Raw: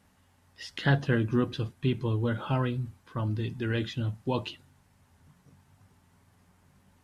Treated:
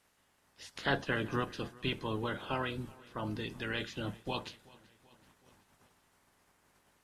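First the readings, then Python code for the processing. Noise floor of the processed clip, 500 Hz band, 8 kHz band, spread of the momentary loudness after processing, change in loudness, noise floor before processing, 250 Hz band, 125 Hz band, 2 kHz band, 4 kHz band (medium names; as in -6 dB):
-72 dBFS, -5.5 dB, no reading, 11 LU, -6.5 dB, -65 dBFS, -8.5 dB, -13.0 dB, -1.5 dB, -1.0 dB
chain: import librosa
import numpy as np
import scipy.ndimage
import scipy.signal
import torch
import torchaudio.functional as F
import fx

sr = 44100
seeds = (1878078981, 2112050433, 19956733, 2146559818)

y = fx.spec_clip(x, sr, under_db=19)
y = fx.echo_feedback(y, sr, ms=381, feedback_pct=58, wet_db=-23.0)
y = y * librosa.db_to_amplitude(-7.5)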